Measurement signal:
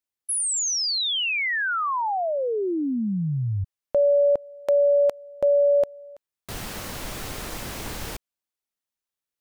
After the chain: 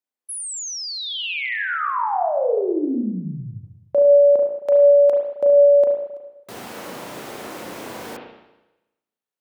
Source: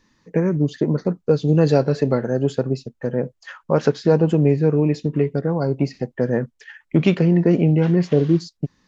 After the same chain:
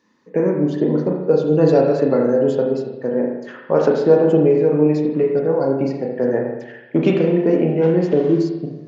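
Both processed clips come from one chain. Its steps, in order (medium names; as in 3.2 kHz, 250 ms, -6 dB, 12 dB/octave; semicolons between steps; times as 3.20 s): Bessel high-pass 210 Hz, order 2; peaking EQ 460 Hz +7.5 dB 2.8 oct; spring tank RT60 1 s, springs 33/37 ms, chirp 50 ms, DRR 0 dB; trim -5 dB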